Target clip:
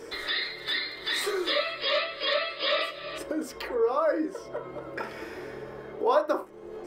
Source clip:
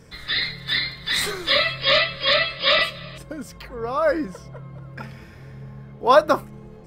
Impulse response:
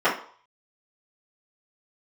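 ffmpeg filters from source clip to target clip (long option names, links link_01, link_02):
-filter_complex "[0:a]lowshelf=frequency=230:width_type=q:width=3:gain=-12,acompressor=threshold=-39dB:ratio=2.5,asplit=2[link_01][link_02];[1:a]atrim=start_sample=2205,afade=type=out:start_time=0.16:duration=0.01,atrim=end_sample=7497[link_03];[link_02][link_03]afir=irnorm=-1:irlink=0,volume=-20.5dB[link_04];[link_01][link_04]amix=inputs=2:normalize=0,volume=4.5dB"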